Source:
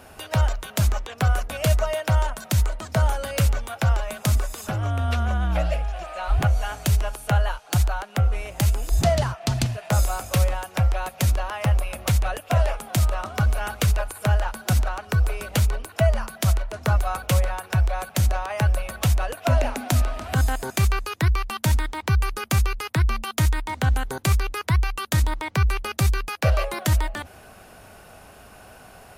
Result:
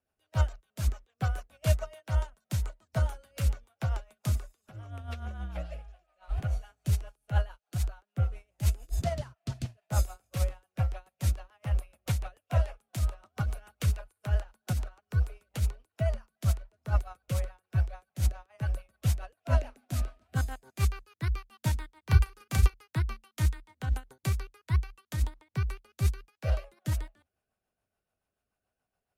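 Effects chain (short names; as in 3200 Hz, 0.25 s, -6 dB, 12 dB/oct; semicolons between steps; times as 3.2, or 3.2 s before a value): 22.02–22.74 doubler 37 ms -2.5 dB; rotary speaker horn 7 Hz; upward expander 2.5:1, over -39 dBFS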